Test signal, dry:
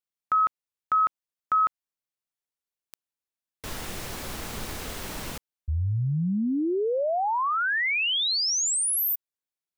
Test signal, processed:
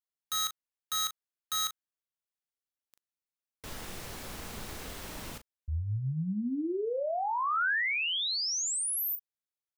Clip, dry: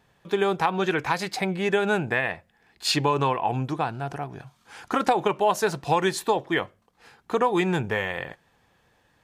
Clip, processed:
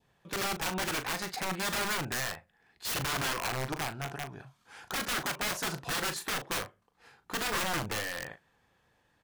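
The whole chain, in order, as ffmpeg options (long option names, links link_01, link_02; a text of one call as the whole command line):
ffmpeg -i in.wav -filter_complex "[0:a]aeval=exprs='(mod(11.2*val(0)+1,2)-1)/11.2':channel_layout=same,adynamicequalizer=threshold=0.01:dfrequency=1500:dqfactor=1.6:tfrequency=1500:tqfactor=1.6:attack=5:release=100:ratio=0.375:range=2:mode=boostabove:tftype=bell,asplit=2[link_01][link_02];[link_02]adelay=38,volume=-10dB[link_03];[link_01][link_03]amix=inputs=2:normalize=0,volume=-7dB" out.wav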